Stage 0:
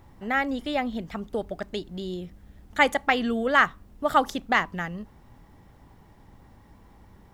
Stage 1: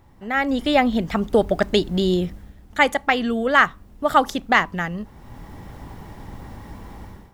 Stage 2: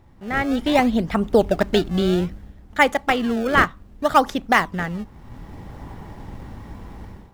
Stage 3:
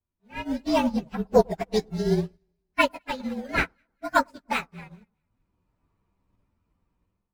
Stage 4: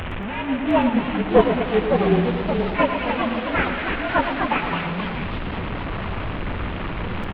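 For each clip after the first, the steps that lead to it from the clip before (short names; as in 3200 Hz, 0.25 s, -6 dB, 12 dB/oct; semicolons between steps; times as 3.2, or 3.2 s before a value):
AGC gain up to 16 dB; gain -1 dB
in parallel at -8 dB: decimation with a swept rate 26×, swing 160% 0.63 Hz; on the sum: high shelf 6600 Hz -6.5 dB; gain -1.5 dB
inharmonic rescaling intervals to 112%; echo with dull and thin repeats by turns 0.103 s, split 1200 Hz, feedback 62%, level -13 dB; upward expander 2.5:1, over -38 dBFS; gain +2.5 dB
delta modulation 16 kbps, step -27 dBFS; echoes that change speed 0.707 s, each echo +2 st, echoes 3, each echo -6 dB; feedback echo 0.115 s, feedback 56%, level -10 dB; gain +4.5 dB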